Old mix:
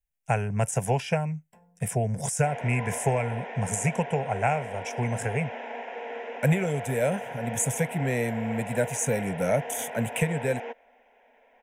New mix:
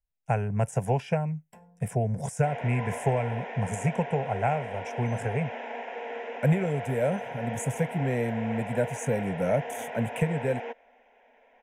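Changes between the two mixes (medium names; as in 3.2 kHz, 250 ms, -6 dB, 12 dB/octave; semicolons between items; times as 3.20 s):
speech: add treble shelf 2.1 kHz -11.5 dB; first sound +5.0 dB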